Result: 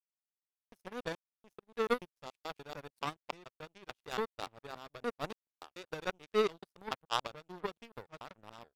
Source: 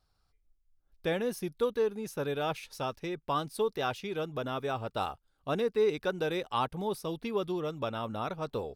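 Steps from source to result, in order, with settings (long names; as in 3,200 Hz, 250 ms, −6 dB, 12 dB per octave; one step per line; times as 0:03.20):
slices reordered back to front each 144 ms, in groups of 5
power curve on the samples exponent 3
level +5.5 dB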